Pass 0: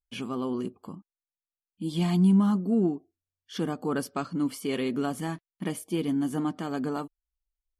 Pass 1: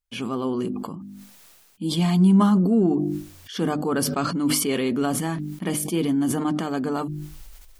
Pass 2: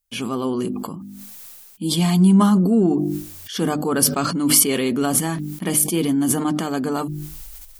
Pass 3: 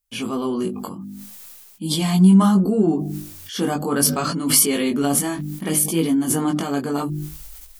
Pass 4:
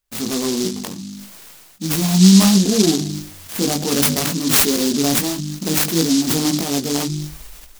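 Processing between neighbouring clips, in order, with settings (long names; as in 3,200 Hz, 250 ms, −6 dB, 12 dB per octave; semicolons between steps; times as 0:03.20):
mains-hum notches 50/100/150/200/250/300/350 Hz; level that may fall only so fast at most 30 dB per second; level +5 dB
high-shelf EQ 6,600 Hz +11.5 dB; level +2.5 dB
chorus effect 0.66 Hz, delay 18.5 ms, depth 2.9 ms; level +2.5 dB
short delay modulated by noise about 5,100 Hz, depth 0.21 ms; level +2.5 dB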